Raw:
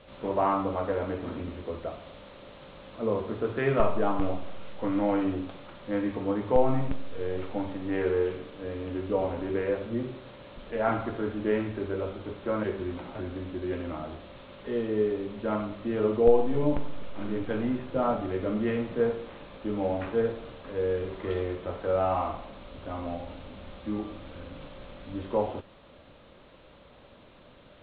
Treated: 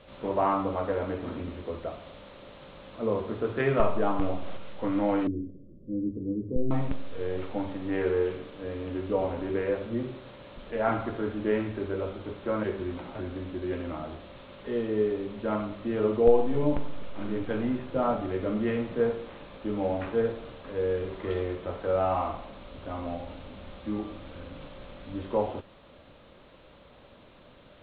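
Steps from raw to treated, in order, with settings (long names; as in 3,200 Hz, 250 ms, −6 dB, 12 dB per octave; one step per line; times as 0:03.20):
0:03.60–0:04.57: upward compression, threshold −24 dBFS
0:05.27–0:06.71: inverse Chebyshev low-pass filter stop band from 770 Hz, stop band 40 dB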